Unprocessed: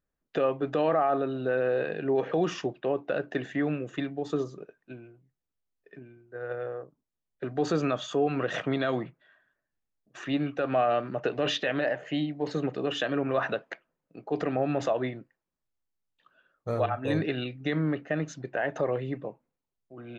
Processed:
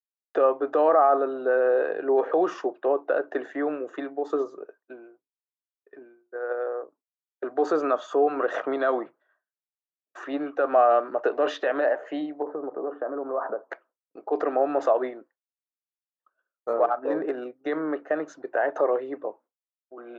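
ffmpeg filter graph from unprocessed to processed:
-filter_complex "[0:a]asettb=1/sr,asplit=3[a][b][c];[a]atrim=end=12.424[d];[b]atrim=start=12.42:end=13.7,asetpts=PTS-STARTPTS,afade=t=in:d=0.004:c=qsin,afade=t=out:st=1.276:d=0.004:c=qsin,lowpass=f=1.2k:w=0.5412,lowpass=f=1.2k:w=1.3066,acompressor=threshold=-31dB:ratio=2.5:attack=3.2:release=140:knee=1:detection=peak[e];[c]atrim=start=13.696[f];[d][e]acrossfade=d=0.004:c1=hsin:c2=qsin[g];[g][f]acrossfade=d=0.004:c1=qsin:c2=hsin,asettb=1/sr,asplit=3[h][i][j];[h]atrim=end=16.734[k];[i]atrim=start=16.73:end=17.64,asetpts=PTS-STARTPTS,afade=t=in:d=0.004:c=qsin,afade=t=out:st=0.906:d=0.004:c=qsin,agate=range=-33dB:threshold=-37dB:ratio=3:release=100:detection=peak,adynamicsmooth=sensitivity=1:basefreq=1.5k[l];[j]atrim=start=17.636[m];[k][l]acrossfade=d=0.004:c1=hsin:c2=qsin[n];[n][m]acrossfade=d=0.004:c1=qsin:c2=hsin,highpass=f=340:w=0.5412,highpass=f=340:w=1.3066,agate=range=-33dB:threshold=-52dB:ratio=3:detection=peak,highshelf=f=1.8k:t=q:w=1.5:g=-11,volume=5dB"

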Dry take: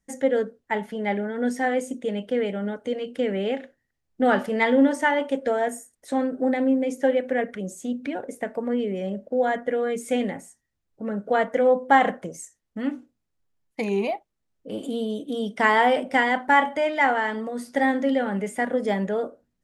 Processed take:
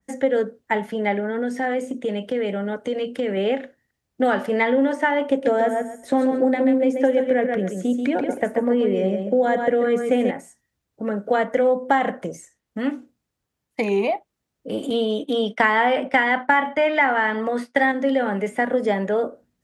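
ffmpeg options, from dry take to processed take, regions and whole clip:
-filter_complex "[0:a]asettb=1/sr,asplit=3[a][b][c];[a]atrim=end=1.194[d];[b]atrim=start=1.19:end=3.37,asetpts=PTS-STARTPTS,afade=t=in:d=0.004:c=qsin,afade=t=out:st=2.176:d=0.004:c=qsin,acompressor=threshold=-26dB:ratio=3:attack=3.2:release=140:knee=1:detection=peak,asoftclip=type=hard:threshold=-20.5dB[e];[c]atrim=start=3.366[f];[d][e]acrossfade=d=0.004:c1=hsin:c2=qsin[g];[g][f]acrossfade=d=0.004:c1=qsin:c2=hsin,asettb=1/sr,asplit=3[h][i][j];[h]atrim=end=5.294[k];[i]atrim=start=5.29:end=10.31,asetpts=PTS-STARTPTS,afade=t=in:d=0.004:c=qsin,afade=t=out:st=5.016:d=0.004:c=qsin,lowshelf=f=410:g=8,aecho=1:1:135|270|405:0.447|0.0849|0.0161,atrim=end_sample=221382[l];[j]atrim=start=10.306[m];[k][l]acrossfade=d=0.004:c1=hsin:c2=qsin[n];[n][m]acrossfade=d=0.004:c1=qsin:c2=hsin,asettb=1/sr,asplit=3[o][p][q];[o]atrim=end=14.904[r];[p]atrim=start=14.9:end=17.92,asetpts=PTS-STARTPTS,afade=t=in:d=0.004:c=qsin,afade=t=out:st=3.016:d=0.004:c=qsin,agate=range=-33dB:threshold=-34dB:ratio=3:release=100:detection=peak,equalizer=f=2.2k:w=0.33:g=8[s];[q]atrim=start=17.916[t];[r][s]acrossfade=d=0.004:c1=hsin:c2=qsin[u];[u][t]acrossfade=d=0.004:c1=qsin:c2=hsin,highpass=52,acrossover=split=290|3700[v][w][x];[v]acompressor=threshold=-36dB:ratio=4[y];[w]acompressor=threshold=-23dB:ratio=4[z];[x]acompressor=threshold=-52dB:ratio=4[aa];[y][z][aa]amix=inputs=3:normalize=0,adynamicequalizer=threshold=0.00708:dfrequency=3100:dqfactor=0.7:tfrequency=3100:tqfactor=0.7:attack=5:release=100:ratio=0.375:range=3:mode=cutabove:tftype=highshelf,volume=6dB"

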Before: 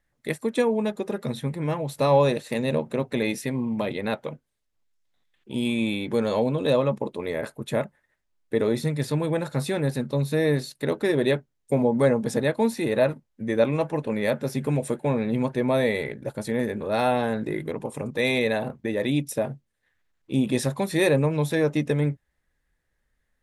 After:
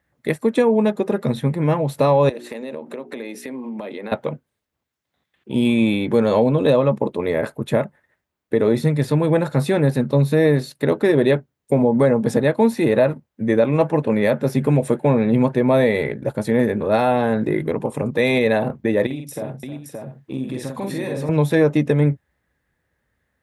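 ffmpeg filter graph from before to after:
-filter_complex "[0:a]asettb=1/sr,asplit=3[a][b][c];[a]atrim=end=2.294[d];[b]atrim=start=2.29:end=4.12,asetpts=PTS-STARTPTS,afade=t=in:d=0.004:c=qsin,afade=t=out:st=1.826:d=0.004:c=qsin,highpass=f=230:w=0.5412,highpass=f=230:w=1.3066,bandreject=f=60:t=h:w=6,bandreject=f=120:t=h:w=6,bandreject=f=180:t=h:w=6,bandreject=f=240:t=h:w=6,bandreject=f=300:t=h:w=6,bandreject=f=360:t=h:w=6,bandreject=f=420:t=h:w=6,acompressor=threshold=-35dB:ratio=8:attack=3.2:release=140:knee=1:detection=peak[e];[c]atrim=start=4.116[f];[d][e]acrossfade=d=0.004:c1=hsin:c2=qsin[g];[g][f]acrossfade=d=0.004:c1=qsin:c2=hsin,asettb=1/sr,asplit=3[h][i][j];[h]atrim=end=19.064[k];[i]atrim=start=19.06:end=21.29,asetpts=PTS-STARTPTS,afade=t=in:d=0.004:c=qsin,afade=t=out:st=2.226:d=0.004:c=qsin,acompressor=threshold=-34dB:ratio=5:attack=3.2:release=140:knee=1:detection=peak,aecho=1:1:46|311|571|660:0.631|0.211|0.631|0.188,atrim=end_sample=98343[l];[j]atrim=start=21.286[m];[k][l]acrossfade=d=0.004:c1=hsin:c2=qsin[n];[n][m]acrossfade=d=0.004:c1=qsin:c2=hsin,highpass=f=62:w=0.5412,highpass=f=62:w=1.3066,equalizer=f=7.1k:w=0.38:g=-8,alimiter=limit=-15dB:level=0:latency=1:release=189,volume=8.5dB"

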